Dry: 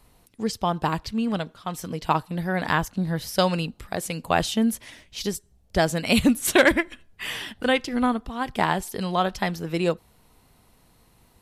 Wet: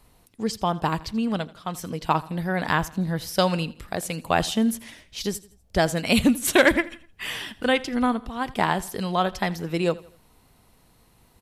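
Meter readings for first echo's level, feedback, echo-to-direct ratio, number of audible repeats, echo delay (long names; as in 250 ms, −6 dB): −20.0 dB, 41%, −19.0 dB, 2, 83 ms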